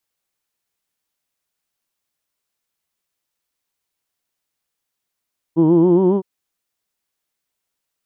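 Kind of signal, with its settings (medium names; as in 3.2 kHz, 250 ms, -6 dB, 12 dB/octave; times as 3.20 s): formant vowel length 0.66 s, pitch 157 Hz, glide +4 st, vibrato 7.3 Hz, F1 340 Hz, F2 950 Hz, F3 3.1 kHz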